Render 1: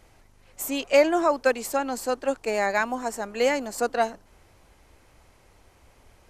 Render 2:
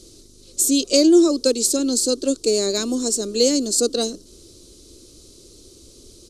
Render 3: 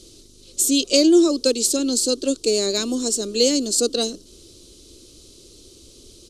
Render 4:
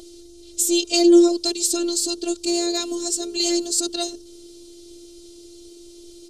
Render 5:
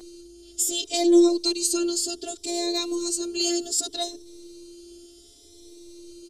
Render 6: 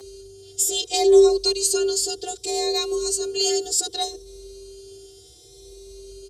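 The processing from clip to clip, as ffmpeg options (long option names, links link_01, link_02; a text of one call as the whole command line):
ffmpeg -i in.wav -filter_complex "[0:a]firequalizer=gain_entry='entry(140,0);entry(350,13);entry(820,-22);entry(1200,-10);entry(1800,-20);entry(3900,14);entry(5900,14);entry(9400,13);entry(15000,-6)':delay=0.05:min_phase=1,asplit=2[link_01][link_02];[link_02]acompressor=threshold=-26dB:ratio=6,volume=-0.5dB[link_03];[link_01][link_03]amix=inputs=2:normalize=0" out.wav
ffmpeg -i in.wav -af "equalizer=frequency=3000:width=1.9:gain=6.5,volume=-1dB" out.wav
ffmpeg -i in.wav -af "aeval=exprs='val(0)+0.0251*sin(2*PI*480*n/s)':channel_layout=same,afftfilt=real='hypot(re,im)*cos(PI*b)':imag='0':win_size=512:overlap=0.75,volume=2dB" out.wav
ffmpeg -i in.wav -filter_complex "[0:a]asplit=2[link_01][link_02];[link_02]adelay=6.2,afreqshift=0.66[link_03];[link_01][link_03]amix=inputs=2:normalize=1" out.wav
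ffmpeg -i in.wav -af "afreqshift=46,volume=3dB" out.wav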